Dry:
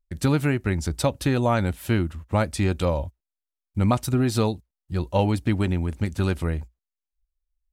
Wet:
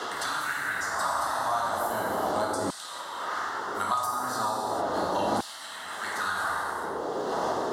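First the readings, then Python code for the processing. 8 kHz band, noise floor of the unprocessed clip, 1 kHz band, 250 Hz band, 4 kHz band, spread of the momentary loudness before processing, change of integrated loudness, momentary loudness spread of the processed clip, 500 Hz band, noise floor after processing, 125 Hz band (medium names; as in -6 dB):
+1.0 dB, under -85 dBFS, +5.0 dB, -13.0 dB, 0.0 dB, 8 LU, -5.0 dB, 5 LU, -4.0 dB, -40 dBFS, -23.5 dB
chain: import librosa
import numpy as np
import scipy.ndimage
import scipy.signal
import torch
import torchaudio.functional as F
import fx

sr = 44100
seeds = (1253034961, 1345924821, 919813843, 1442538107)

y = fx.dmg_wind(x, sr, seeds[0], corner_hz=470.0, level_db=-25.0)
y = fx.peak_eq(y, sr, hz=66.0, db=6.0, octaves=1.6)
y = fx.fixed_phaser(y, sr, hz=1000.0, stages=4)
y = fx.rev_gated(y, sr, seeds[1], gate_ms=470, shape='falling', drr_db=-7.0)
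y = fx.dmg_noise_band(y, sr, seeds[2], low_hz=130.0, high_hz=460.0, level_db=-28.0)
y = fx.filter_lfo_highpass(y, sr, shape='saw_down', hz=0.37, low_hz=340.0, high_hz=3300.0, q=1.2)
y = fx.band_squash(y, sr, depth_pct=100)
y = F.gain(torch.from_numpy(y), -6.0).numpy()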